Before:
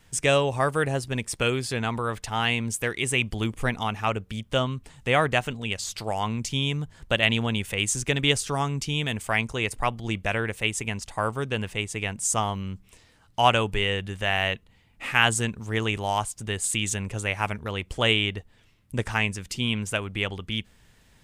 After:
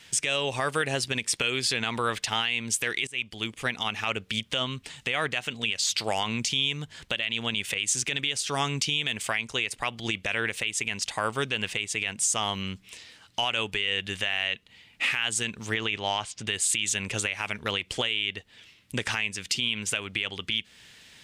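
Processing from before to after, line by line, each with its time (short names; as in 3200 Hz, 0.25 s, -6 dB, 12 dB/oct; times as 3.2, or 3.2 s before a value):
3.07–4.32 fade in, from -22 dB
15.74–16.47 LPF 4600 Hz
whole clip: weighting filter D; compressor 2.5:1, threshold -25 dBFS; limiter -17 dBFS; gain +2.5 dB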